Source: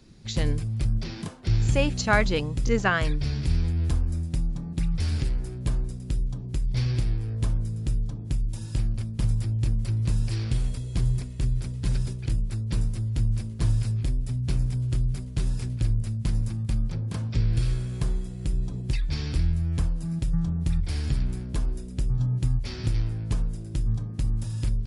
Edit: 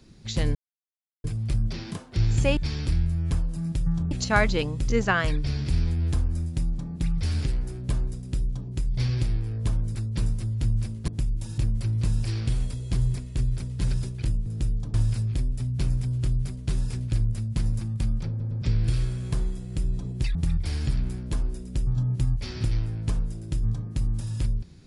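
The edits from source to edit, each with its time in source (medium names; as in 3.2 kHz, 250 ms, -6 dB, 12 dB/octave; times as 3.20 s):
0.55 s: insert silence 0.69 s
7.72–8.20 s: swap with 12.50–13.63 s
8.70–9.62 s: delete
16.98 s: stutter in place 0.11 s, 3 plays
19.04–20.58 s: move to 1.88 s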